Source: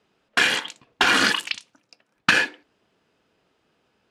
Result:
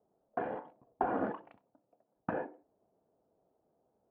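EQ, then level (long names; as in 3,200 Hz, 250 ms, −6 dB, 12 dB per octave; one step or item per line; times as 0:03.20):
transistor ladder low-pass 810 Hz, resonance 50%
0.0 dB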